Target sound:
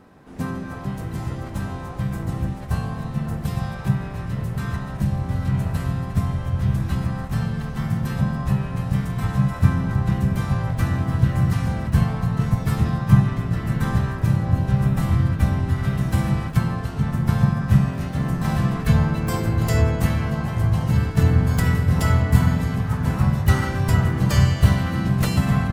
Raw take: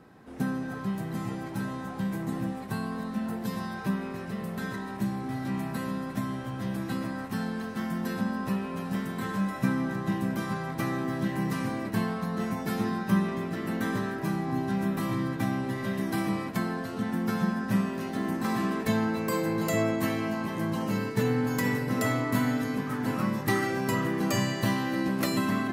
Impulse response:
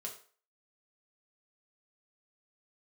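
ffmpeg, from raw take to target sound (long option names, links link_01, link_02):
-filter_complex "[0:a]asplit=4[link_01][link_02][link_03][link_04];[link_02]asetrate=29433,aresample=44100,atempo=1.49831,volume=-3dB[link_05];[link_03]asetrate=33038,aresample=44100,atempo=1.33484,volume=-6dB[link_06];[link_04]asetrate=66075,aresample=44100,atempo=0.66742,volume=-16dB[link_07];[link_01][link_05][link_06][link_07]amix=inputs=4:normalize=0,asubboost=boost=11.5:cutoff=84,volume=1.5dB"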